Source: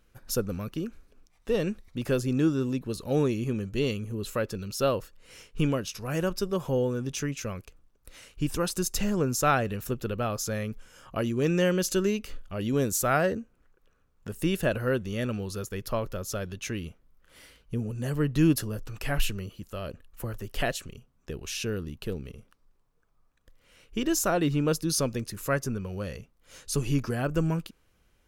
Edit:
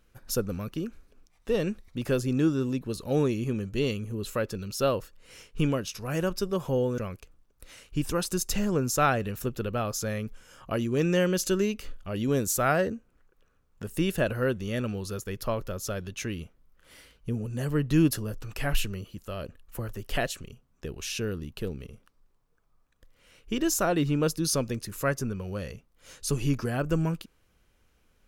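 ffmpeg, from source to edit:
-filter_complex "[0:a]asplit=2[s0][s1];[s0]atrim=end=6.982[s2];[s1]atrim=start=7.428[s3];[s2][s3]acrossfade=d=0.004:c1=hsin:c2=hsin"

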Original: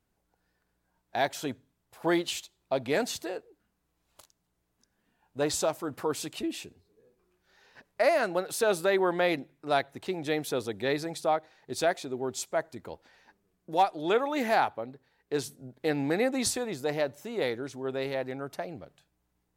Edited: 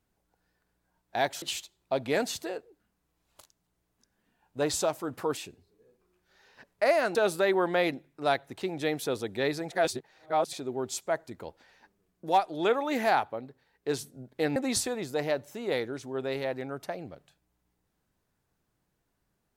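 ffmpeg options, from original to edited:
-filter_complex "[0:a]asplit=7[s0][s1][s2][s3][s4][s5][s6];[s0]atrim=end=1.422[s7];[s1]atrim=start=2.218:end=6.172[s8];[s2]atrim=start=6.548:end=8.332[s9];[s3]atrim=start=8.598:end=11.162[s10];[s4]atrim=start=11.158:end=11.982,asetpts=PTS-STARTPTS,areverse[s11];[s5]atrim=start=11.978:end=16.012[s12];[s6]atrim=start=16.258[s13];[s7][s8]acrossfade=d=0.004:c1=hsin:c2=hsin[s14];[s14][s9]acrossfade=d=0.004:c1=hsin:c2=hsin[s15];[s15][s10]acrossfade=d=0.004:c1=hsin:c2=hsin[s16];[s16][s11]acrossfade=d=0.004:c1=hsin:c2=hsin[s17];[s17][s12]acrossfade=d=0.004:c1=hsin:c2=hsin[s18];[s18][s13]acrossfade=d=0.004:c1=hsin:c2=hsin"

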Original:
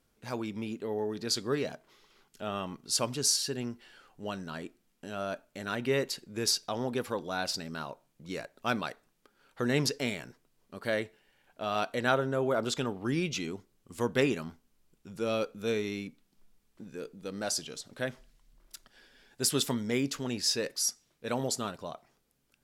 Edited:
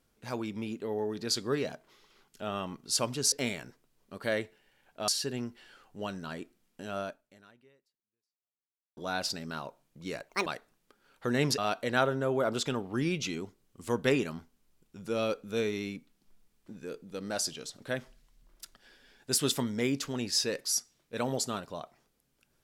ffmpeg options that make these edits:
-filter_complex "[0:a]asplit=7[s0][s1][s2][s3][s4][s5][s6];[s0]atrim=end=3.322[s7];[s1]atrim=start=9.928:end=11.692[s8];[s2]atrim=start=3.318:end=7.21,asetpts=PTS-STARTPTS,afade=t=out:st=1.932:d=1.96:c=exp[s9];[s3]atrim=start=7.21:end=8.534,asetpts=PTS-STARTPTS,afade=t=in:d=0.004:c=hsin[s10];[s4]atrim=start=8.53:end=8.81,asetpts=PTS-STARTPTS,asetrate=72765,aresample=44100[s11];[s5]atrim=start=8.806:end=9.932[s12];[s6]atrim=start=11.688[s13];[s7][s8]acrossfade=d=0.004:c1=hsin:c2=hsin[s14];[s9][s10]concat=n=2:v=0:a=1[s15];[s14][s15]acrossfade=d=0.004:c1=hsin:c2=hsin[s16];[s16][s11]acrossfade=d=0.004:c1=hsin:c2=hsin[s17];[s17][s12]acrossfade=d=0.004:c1=hsin:c2=hsin[s18];[s18][s13]acrossfade=d=0.004:c1=hsin:c2=hsin"

